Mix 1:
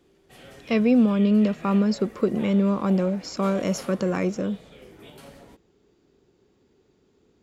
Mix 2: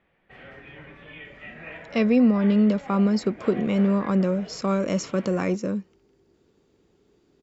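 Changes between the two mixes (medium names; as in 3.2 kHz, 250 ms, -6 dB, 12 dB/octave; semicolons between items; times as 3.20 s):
speech: entry +1.25 s; background: add resonant low-pass 2 kHz, resonance Q 2.3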